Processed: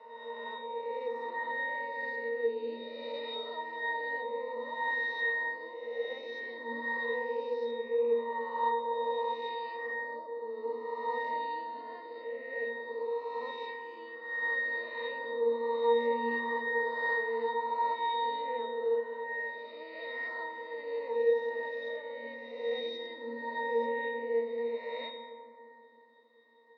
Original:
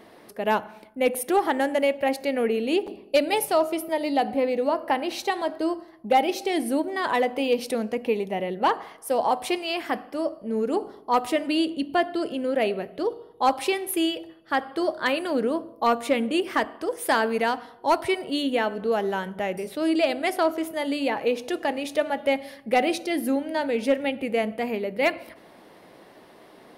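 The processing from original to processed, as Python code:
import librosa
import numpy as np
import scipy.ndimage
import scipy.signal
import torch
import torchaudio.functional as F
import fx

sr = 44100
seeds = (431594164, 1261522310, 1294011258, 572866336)

y = fx.spec_swells(x, sr, rise_s=2.02)
y = scipy.signal.sosfilt(scipy.signal.ellip(3, 1.0, 50, [390.0, 5400.0], 'bandpass', fs=sr, output='sos'), y)
y = fx.high_shelf(y, sr, hz=2500.0, db=12.0)
y = fx.octave_resonator(y, sr, note='A#', decay_s=0.76)
y = fx.rev_fdn(y, sr, rt60_s=2.5, lf_ratio=1.55, hf_ratio=0.35, size_ms=40.0, drr_db=5.5)
y = y * 10.0 ** (5.5 / 20.0)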